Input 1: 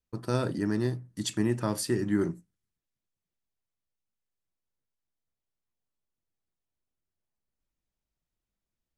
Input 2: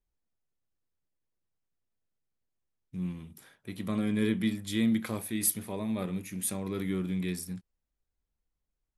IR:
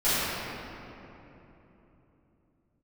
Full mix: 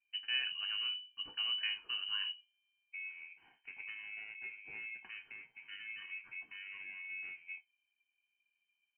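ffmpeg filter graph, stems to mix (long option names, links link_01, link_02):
-filter_complex "[0:a]volume=-4.5dB[link_01];[1:a]equalizer=frequency=1700:width_type=o:width=0.91:gain=-5,acompressor=threshold=-40dB:ratio=5,aeval=exprs='val(0)*sin(2*PI*710*n/s)':channel_layout=same,volume=1.5dB[link_02];[link_01][link_02]amix=inputs=2:normalize=0,aecho=1:1:1.4:0.71,flanger=delay=8.7:depth=7.1:regen=57:speed=0.36:shape=sinusoidal,lowpass=frequency=2600:width_type=q:width=0.5098,lowpass=frequency=2600:width_type=q:width=0.6013,lowpass=frequency=2600:width_type=q:width=0.9,lowpass=frequency=2600:width_type=q:width=2.563,afreqshift=-3100"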